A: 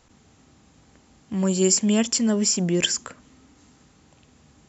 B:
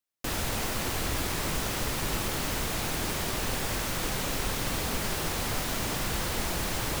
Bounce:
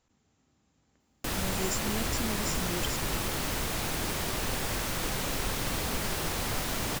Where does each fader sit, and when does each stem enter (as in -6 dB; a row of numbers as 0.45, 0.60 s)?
-15.5, -1.0 dB; 0.00, 1.00 s